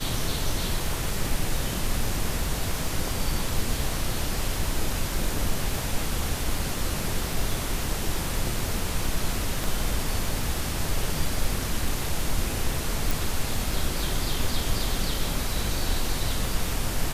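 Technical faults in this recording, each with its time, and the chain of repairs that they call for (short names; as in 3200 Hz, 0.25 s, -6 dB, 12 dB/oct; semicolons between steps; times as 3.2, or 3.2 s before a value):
crackle 32/s -32 dBFS
9.64 pop
13.11 pop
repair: de-click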